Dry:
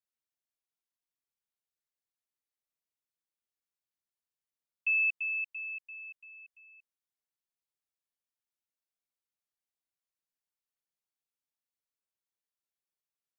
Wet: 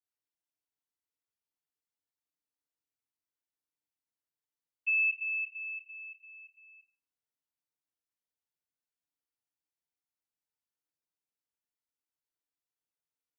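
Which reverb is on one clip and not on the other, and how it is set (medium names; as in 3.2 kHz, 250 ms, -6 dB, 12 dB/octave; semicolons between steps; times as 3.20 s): FDN reverb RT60 0.53 s, low-frequency decay 1.2×, high-frequency decay 0.6×, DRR -8.5 dB; trim -12.5 dB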